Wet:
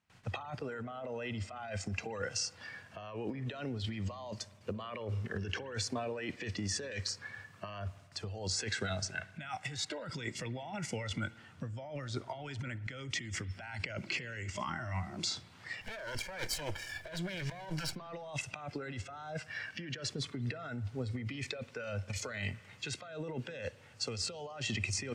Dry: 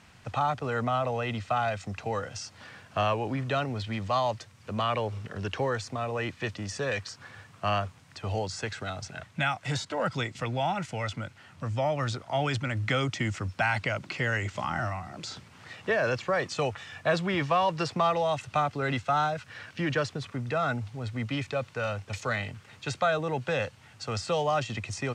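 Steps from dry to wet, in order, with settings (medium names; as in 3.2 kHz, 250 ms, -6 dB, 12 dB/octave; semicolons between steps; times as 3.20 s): 15.81–17.96 s: comb filter that takes the minimum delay 1.3 ms; gate with hold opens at -45 dBFS; spectral noise reduction 10 dB; compressor with a negative ratio -38 dBFS, ratio -1; spring tank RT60 1.6 s, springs 52 ms, chirp 65 ms, DRR 17.5 dB; trim -2 dB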